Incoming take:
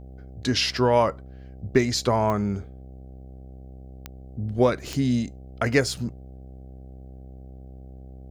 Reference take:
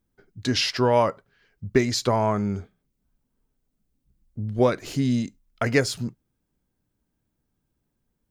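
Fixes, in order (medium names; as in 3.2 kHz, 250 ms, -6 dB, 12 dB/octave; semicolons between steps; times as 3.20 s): de-click; de-hum 65 Hz, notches 12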